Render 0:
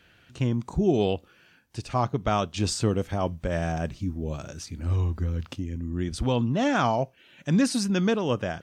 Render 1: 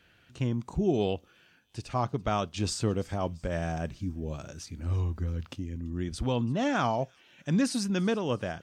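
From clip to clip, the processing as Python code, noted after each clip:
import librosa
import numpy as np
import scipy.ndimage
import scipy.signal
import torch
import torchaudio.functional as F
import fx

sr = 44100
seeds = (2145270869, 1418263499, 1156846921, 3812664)

y = fx.echo_wet_highpass(x, sr, ms=337, feedback_pct=51, hz=3100.0, wet_db=-22)
y = y * 10.0 ** (-4.0 / 20.0)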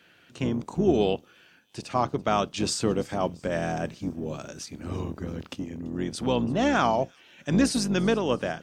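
y = fx.octave_divider(x, sr, octaves=2, level_db=2.0)
y = scipy.signal.sosfilt(scipy.signal.butter(2, 190.0, 'highpass', fs=sr, output='sos'), y)
y = y * 10.0 ** (5.0 / 20.0)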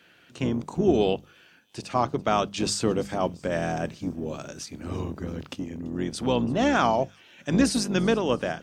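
y = fx.hum_notches(x, sr, base_hz=50, count=4)
y = y * 10.0 ** (1.0 / 20.0)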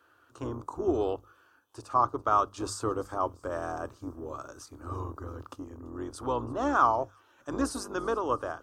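y = fx.curve_eq(x, sr, hz=(110.0, 180.0, 290.0, 720.0, 1200.0, 2100.0, 11000.0), db=(0, -24, -2, -3, 10, -17, -1))
y = y * 10.0 ** (-3.5 / 20.0)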